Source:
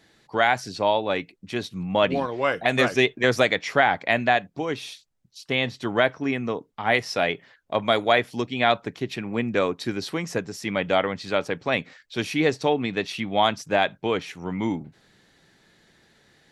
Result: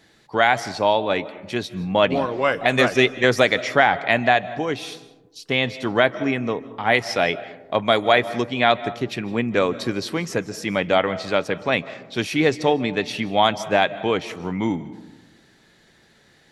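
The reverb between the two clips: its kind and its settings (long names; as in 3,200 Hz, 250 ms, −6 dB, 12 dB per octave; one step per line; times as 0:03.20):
comb and all-pass reverb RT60 1.1 s, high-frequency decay 0.3×, pre-delay 115 ms, DRR 16 dB
level +3 dB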